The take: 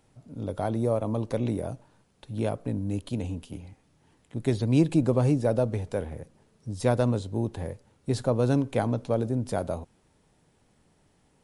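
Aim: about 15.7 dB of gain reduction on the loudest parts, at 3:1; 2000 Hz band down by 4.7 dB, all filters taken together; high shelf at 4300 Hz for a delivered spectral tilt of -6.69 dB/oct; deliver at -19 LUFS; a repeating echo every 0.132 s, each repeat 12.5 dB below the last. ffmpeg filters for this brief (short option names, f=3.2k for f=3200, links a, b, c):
-af "equalizer=f=2k:t=o:g=-5,highshelf=f=4.3k:g=-8.5,acompressor=threshold=-40dB:ratio=3,aecho=1:1:132|264|396:0.237|0.0569|0.0137,volume=22.5dB"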